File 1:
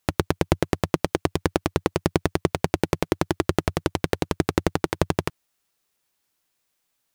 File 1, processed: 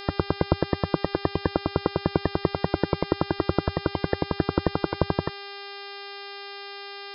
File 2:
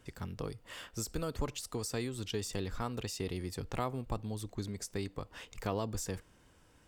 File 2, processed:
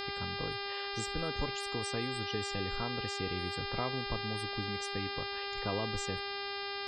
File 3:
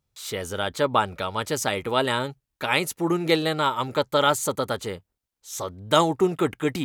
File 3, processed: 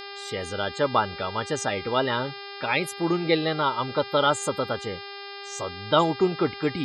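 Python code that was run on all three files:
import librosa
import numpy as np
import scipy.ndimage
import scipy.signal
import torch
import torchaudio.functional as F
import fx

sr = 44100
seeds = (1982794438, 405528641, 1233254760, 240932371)

y = fx.spec_topn(x, sr, count=64)
y = fx.dmg_buzz(y, sr, base_hz=400.0, harmonics=13, level_db=-38.0, tilt_db=-2, odd_only=False)
y = F.gain(torch.from_numpy(y), -1.0).numpy()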